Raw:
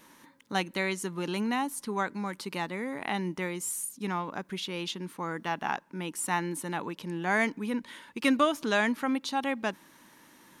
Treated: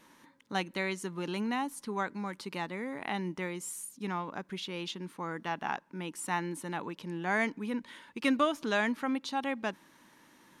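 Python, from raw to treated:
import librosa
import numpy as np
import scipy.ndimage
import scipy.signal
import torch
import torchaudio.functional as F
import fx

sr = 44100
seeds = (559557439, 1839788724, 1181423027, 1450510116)

y = fx.high_shelf(x, sr, hz=10000.0, db=-9.0)
y = y * librosa.db_to_amplitude(-3.0)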